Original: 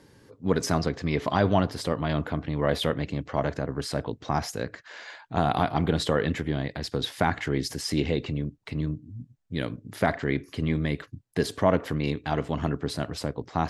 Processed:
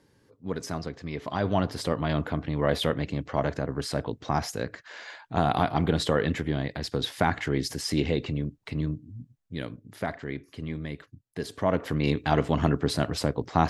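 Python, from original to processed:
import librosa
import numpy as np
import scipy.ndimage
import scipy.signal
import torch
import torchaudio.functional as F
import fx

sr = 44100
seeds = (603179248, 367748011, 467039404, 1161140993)

y = fx.gain(x, sr, db=fx.line((1.21, -8.0), (1.75, 0.0), (8.87, 0.0), (10.17, -8.0), (11.39, -8.0), (12.16, 4.0)))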